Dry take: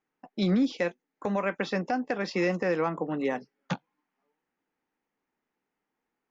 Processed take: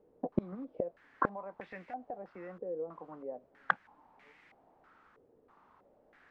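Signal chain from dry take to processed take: dynamic EQ 650 Hz, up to +4 dB, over -40 dBFS, Q 1.5; in parallel at -2 dB: level quantiser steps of 11 dB; on the sum: flipped gate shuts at -24 dBFS, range -33 dB; added noise white -70 dBFS; stepped low-pass 3.1 Hz 480–2100 Hz; gain +8.5 dB

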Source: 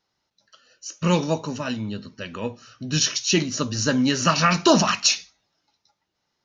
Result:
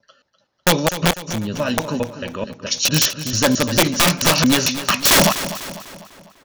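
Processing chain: slices in reverse order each 0.222 s, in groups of 3; wrapped overs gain 12.5 dB; small resonant body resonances 570/3400 Hz, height 8 dB; on a send: feedback echo 0.249 s, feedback 52%, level -12.5 dB; on the sum: mismatched tape noise reduction decoder only; gain +5 dB

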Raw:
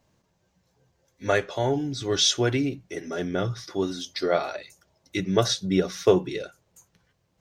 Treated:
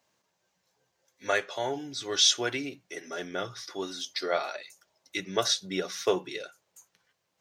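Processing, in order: HPF 930 Hz 6 dB/oct

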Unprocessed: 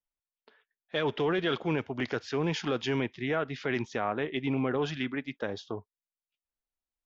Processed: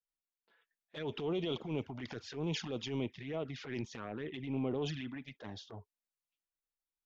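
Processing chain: dynamic EQ 1600 Hz, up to -5 dB, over -44 dBFS, Q 1.1; envelope flanger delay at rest 6.3 ms, full sweep at -25.5 dBFS; transient shaper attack -10 dB, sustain +5 dB; gain -4.5 dB

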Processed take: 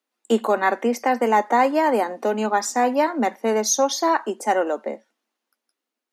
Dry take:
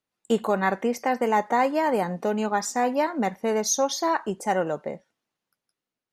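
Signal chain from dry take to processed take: Chebyshev high-pass 220 Hz, order 6; gain +4.5 dB

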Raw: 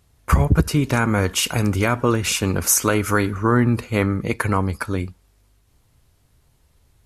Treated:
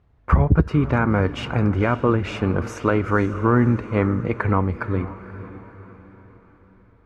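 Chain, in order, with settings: LPF 1700 Hz 12 dB/oct; diffused feedback echo 0.515 s, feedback 46%, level -14 dB

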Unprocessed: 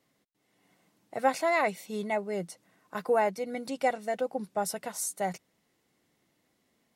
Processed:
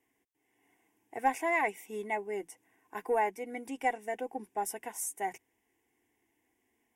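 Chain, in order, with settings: added harmonics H 4 -25 dB, 6 -31 dB, 7 -38 dB, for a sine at -12 dBFS; fixed phaser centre 860 Hz, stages 8

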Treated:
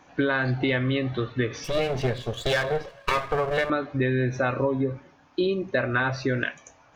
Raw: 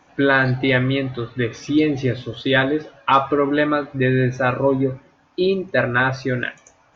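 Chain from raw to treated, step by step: 1.64–3.7 minimum comb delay 1.8 ms; compressor, threshold -21 dBFS, peak gain reduction 10 dB

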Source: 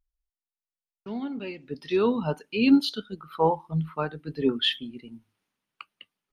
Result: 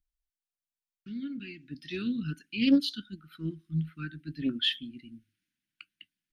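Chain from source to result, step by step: Chebyshev band-stop 330–1500 Hz, order 4; Doppler distortion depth 0.19 ms; gain -3 dB

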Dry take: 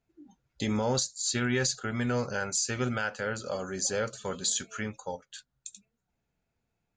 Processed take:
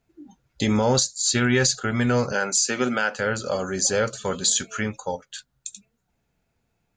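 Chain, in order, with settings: 2.32–3.17 HPF 180 Hz 24 dB/oct; gain +8 dB

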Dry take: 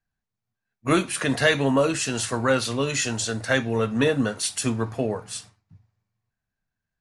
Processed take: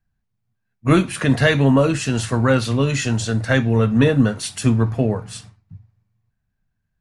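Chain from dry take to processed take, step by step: tone controls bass +10 dB, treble -5 dB; gain +2.5 dB

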